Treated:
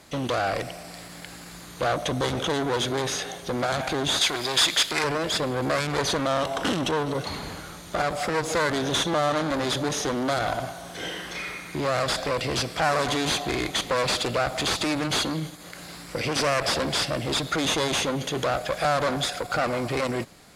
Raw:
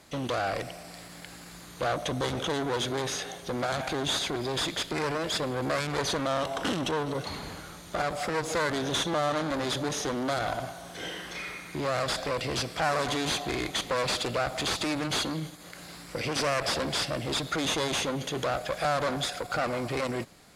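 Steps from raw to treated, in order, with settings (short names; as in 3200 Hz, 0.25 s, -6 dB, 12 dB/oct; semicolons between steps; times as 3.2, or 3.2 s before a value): 4.21–5.04 tilt shelf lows -7.5 dB, about 750 Hz; gain +4 dB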